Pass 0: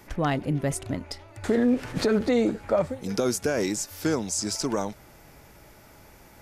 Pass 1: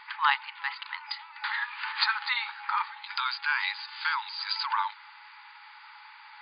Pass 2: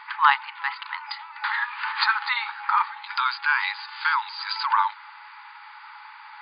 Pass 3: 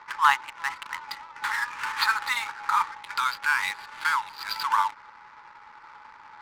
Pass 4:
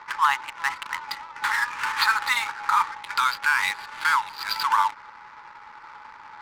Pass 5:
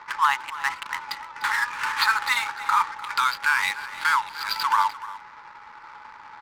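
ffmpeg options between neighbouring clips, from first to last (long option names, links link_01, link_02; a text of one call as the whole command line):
ffmpeg -i in.wav -af "afftfilt=real='re*between(b*sr/4096,820,4900)':imag='im*between(b*sr/4096,820,4900)':win_size=4096:overlap=0.75,volume=8dB" out.wav
ffmpeg -i in.wav -af "equalizer=frequency=1100:width=0.81:gain=8" out.wav
ffmpeg -i in.wav -af "adynamicsmooth=sensitivity=8:basefreq=700,volume=-2dB" out.wav
ffmpeg -i in.wav -af "alimiter=level_in=13dB:limit=-1dB:release=50:level=0:latency=1,volume=-9dB" out.wav
ffmpeg -i in.wav -af "aecho=1:1:299:0.158" out.wav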